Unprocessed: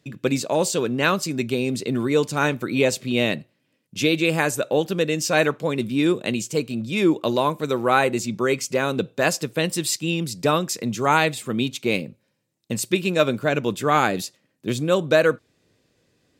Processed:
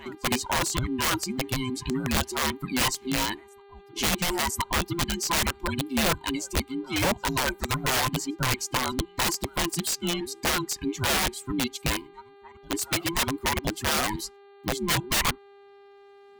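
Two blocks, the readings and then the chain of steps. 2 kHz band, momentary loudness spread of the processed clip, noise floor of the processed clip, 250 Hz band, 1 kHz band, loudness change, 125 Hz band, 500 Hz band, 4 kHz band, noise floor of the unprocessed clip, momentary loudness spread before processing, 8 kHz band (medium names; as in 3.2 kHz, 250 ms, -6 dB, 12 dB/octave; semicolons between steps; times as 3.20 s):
-4.0 dB, 5 LU, -52 dBFS, -7.0 dB, -4.5 dB, -4.5 dB, -4.5 dB, -12.0 dB, +1.0 dB, -70 dBFS, 7 LU, +1.0 dB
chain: every band turned upside down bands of 500 Hz; on a send: reverse echo 1016 ms -23 dB; on the sum: reverb removal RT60 1.4 s; integer overflow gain 15.5 dB; mains buzz 400 Hz, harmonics 11, -49 dBFS -8 dB/octave; trim -3 dB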